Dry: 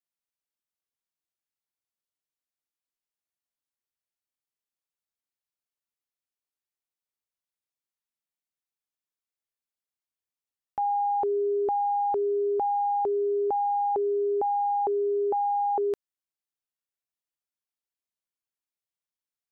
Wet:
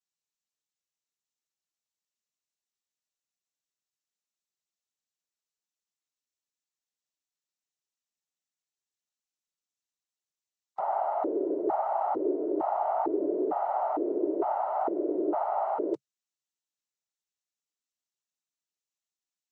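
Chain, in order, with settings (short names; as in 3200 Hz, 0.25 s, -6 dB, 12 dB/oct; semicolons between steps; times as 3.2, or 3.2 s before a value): noise vocoder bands 12; gain -3 dB; Vorbis 128 kbps 44100 Hz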